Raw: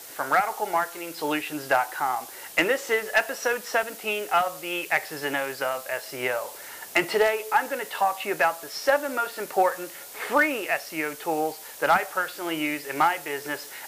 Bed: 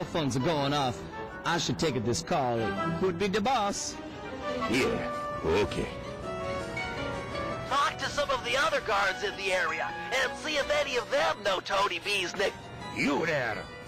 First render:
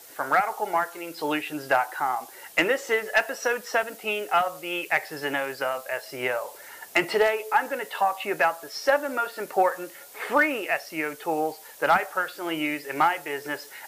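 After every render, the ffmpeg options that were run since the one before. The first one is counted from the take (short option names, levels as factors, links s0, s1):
-af "afftdn=nr=6:nf=-42"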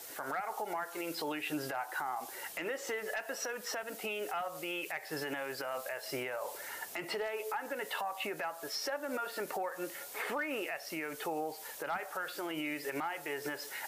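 -af "acompressor=threshold=0.0355:ratio=6,alimiter=level_in=1.5:limit=0.0631:level=0:latency=1:release=101,volume=0.668"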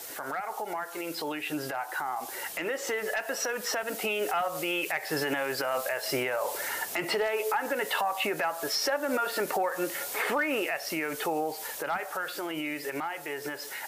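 -filter_complex "[0:a]asplit=2[s0][s1];[s1]alimiter=level_in=3.98:limit=0.0631:level=0:latency=1:release=210,volume=0.251,volume=1.06[s2];[s0][s2]amix=inputs=2:normalize=0,dynaudnorm=f=460:g=13:m=1.88"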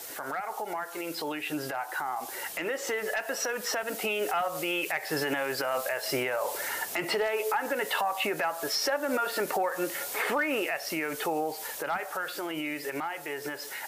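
-af anull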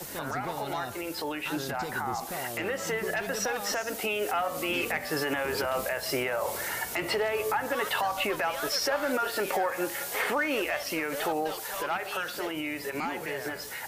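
-filter_complex "[1:a]volume=0.299[s0];[0:a][s0]amix=inputs=2:normalize=0"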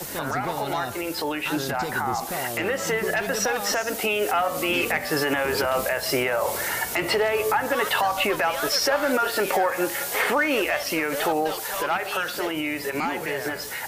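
-af "volume=2"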